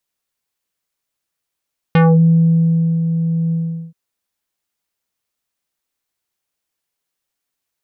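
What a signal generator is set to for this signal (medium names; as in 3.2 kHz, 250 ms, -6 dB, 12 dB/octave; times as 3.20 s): synth note square E3 24 dB/octave, low-pass 300 Hz, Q 1, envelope 3.5 oct, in 0.24 s, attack 1.6 ms, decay 1.06 s, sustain -8.5 dB, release 0.41 s, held 1.57 s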